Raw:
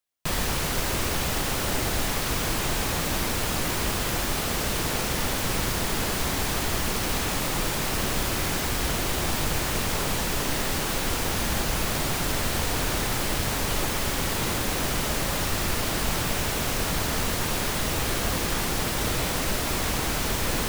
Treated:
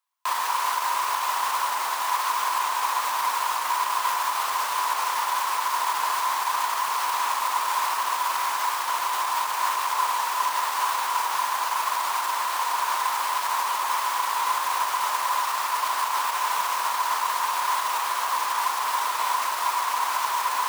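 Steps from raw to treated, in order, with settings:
brickwall limiter −20 dBFS, peak gain reduction 8 dB
high-pass with resonance 1,000 Hz, resonance Q 11

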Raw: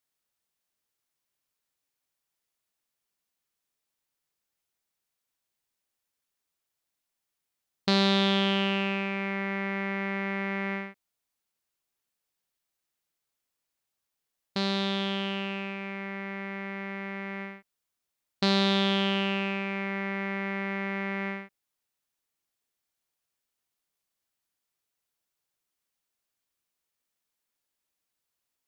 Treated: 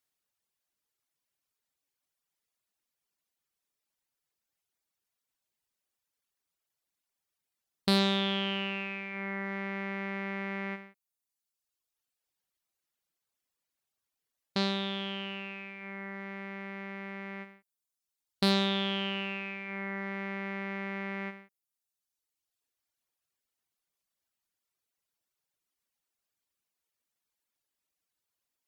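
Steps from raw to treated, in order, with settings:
reverb reduction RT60 1.2 s
asymmetric clip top −23 dBFS

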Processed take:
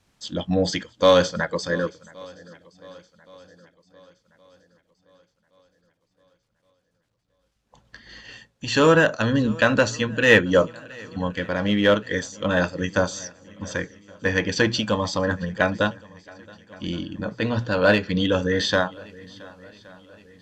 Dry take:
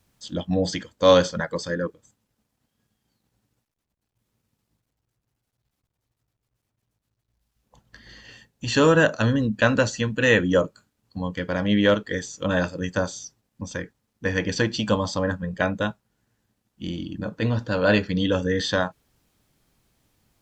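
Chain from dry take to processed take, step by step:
Bessel low-pass filter 6,600 Hz
low-shelf EQ 480 Hz −4 dB
mains-hum notches 60/120 Hz
in parallel at −10 dB: hard clipping −19 dBFS, distortion −9 dB
on the sum: feedback echo with a long and a short gap by turns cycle 1,120 ms, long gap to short 1.5 to 1, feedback 44%, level −23 dB
amplitude modulation by smooth noise, depth 55%
level +4.5 dB

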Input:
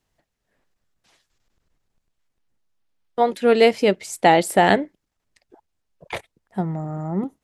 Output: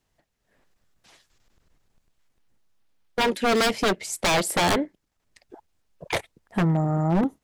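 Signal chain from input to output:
automatic gain control gain up to 5.5 dB
wave folding −15.5 dBFS

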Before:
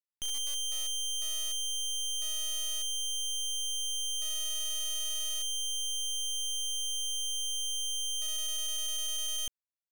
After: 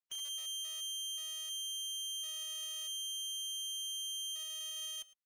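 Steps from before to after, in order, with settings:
phase-vocoder stretch with locked phases 0.53×
high-pass filter 870 Hz 6 dB per octave
brickwall limiter −33.5 dBFS, peak gain reduction 4.5 dB
high-shelf EQ 7,500 Hz −11.5 dB
on a send: single-tap delay 109 ms −20 dB

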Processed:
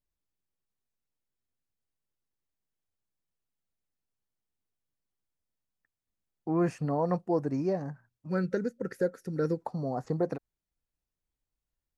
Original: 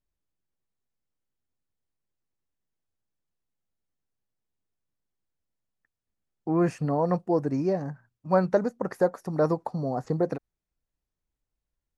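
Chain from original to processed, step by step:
gain on a spectral selection 0:08.29–0:09.62, 540–1,300 Hz −17 dB
level −3.5 dB

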